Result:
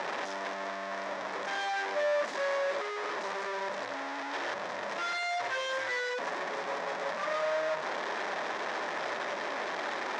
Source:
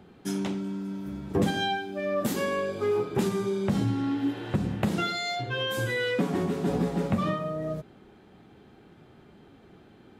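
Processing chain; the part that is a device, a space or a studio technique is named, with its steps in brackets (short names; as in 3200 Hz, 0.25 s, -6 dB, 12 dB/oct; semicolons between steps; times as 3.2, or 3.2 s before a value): home computer beeper (infinite clipping; speaker cabinet 590–5400 Hz, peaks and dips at 590 Hz +9 dB, 1000 Hz +6 dB, 1800 Hz +7 dB, 2900 Hz -5 dB, 4400 Hz -5 dB); gain -3.5 dB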